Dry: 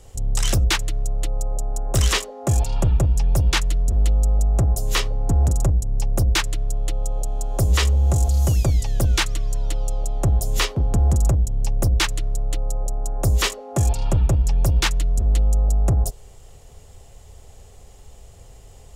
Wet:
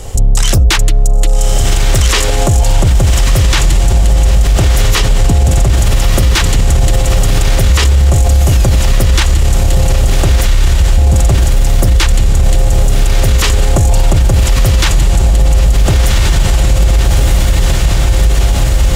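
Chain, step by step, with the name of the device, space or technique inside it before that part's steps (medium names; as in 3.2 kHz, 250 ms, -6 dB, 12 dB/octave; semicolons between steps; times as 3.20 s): 10.45–10.98 s: inverse Chebyshev band-stop 450–9900 Hz, stop band 80 dB; echo that smears into a reverb 1248 ms, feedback 65%, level -5 dB; loud club master (compression 2:1, threshold -17 dBFS, peak gain reduction 4.5 dB; hard clipper -10 dBFS, distortion -48 dB; loudness maximiser +21.5 dB); trim -1 dB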